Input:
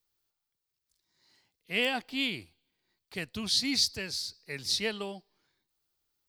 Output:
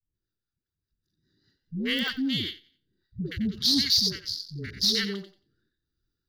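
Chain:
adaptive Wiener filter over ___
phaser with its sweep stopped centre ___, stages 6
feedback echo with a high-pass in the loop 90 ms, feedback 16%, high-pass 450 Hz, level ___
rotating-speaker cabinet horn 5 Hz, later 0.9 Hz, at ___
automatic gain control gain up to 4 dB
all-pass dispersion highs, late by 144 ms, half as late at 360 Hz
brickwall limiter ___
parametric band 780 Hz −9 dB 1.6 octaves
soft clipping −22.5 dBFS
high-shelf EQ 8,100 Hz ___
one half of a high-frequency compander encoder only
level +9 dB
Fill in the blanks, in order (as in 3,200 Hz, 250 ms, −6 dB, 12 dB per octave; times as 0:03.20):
41 samples, 2,500 Hz, −10 dB, 0:02.27, −19.5 dBFS, +2.5 dB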